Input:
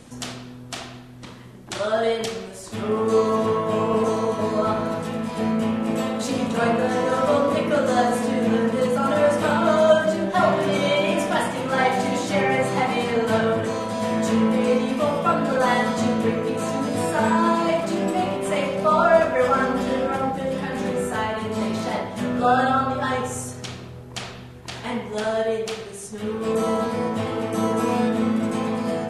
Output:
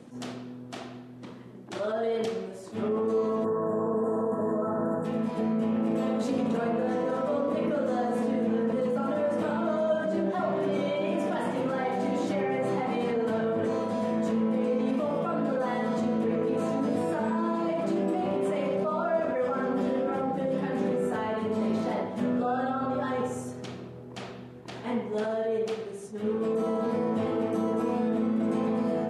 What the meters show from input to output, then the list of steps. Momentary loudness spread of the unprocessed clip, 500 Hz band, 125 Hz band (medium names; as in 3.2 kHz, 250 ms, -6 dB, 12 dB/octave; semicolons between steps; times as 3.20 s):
13 LU, -6.0 dB, -7.0 dB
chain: time-frequency box 3.44–5.05 s, 1.9–6.8 kHz -25 dB; high-pass 180 Hz 12 dB/octave; in parallel at +1.5 dB: compressor with a negative ratio -26 dBFS, ratio -1; on the sum: FFT filter 390 Hz 0 dB, 950 Hz -6 dB, 9.4 kHz -15 dB; attacks held to a fixed rise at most 220 dB/s; trim -8.5 dB